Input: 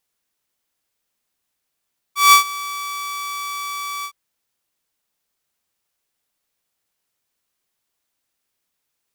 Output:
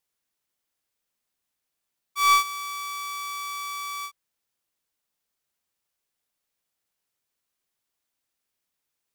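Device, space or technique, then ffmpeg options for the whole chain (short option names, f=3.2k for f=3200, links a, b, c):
saturation between pre-emphasis and de-emphasis: -af "highshelf=f=9.8k:g=10,asoftclip=type=tanh:threshold=-4.5dB,highshelf=f=9.8k:g=-10,volume=-5.5dB"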